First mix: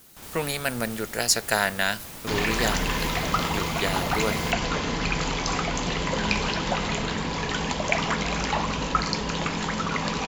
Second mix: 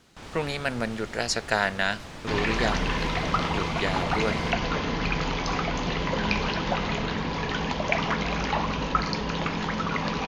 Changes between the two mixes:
first sound +4.0 dB; second sound: add steep low-pass 6800 Hz 96 dB/oct; master: add air absorption 110 m

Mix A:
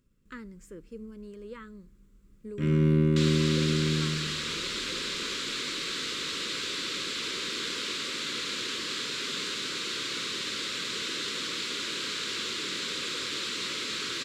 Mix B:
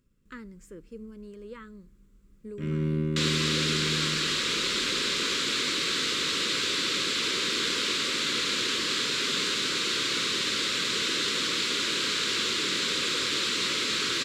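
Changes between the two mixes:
first sound -5.0 dB; second sound +5.5 dB

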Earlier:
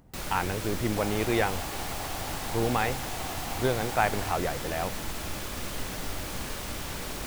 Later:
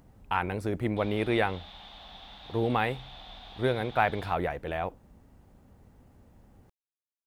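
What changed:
first sound: muted; second sound: add ladder low-pass 3700 Hz, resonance 85%

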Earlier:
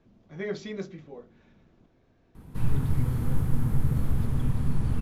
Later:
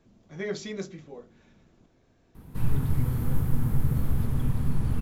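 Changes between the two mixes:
speech: remove air absorption 130 m; master: remove LPF 11000 Hz 12 dB/oct

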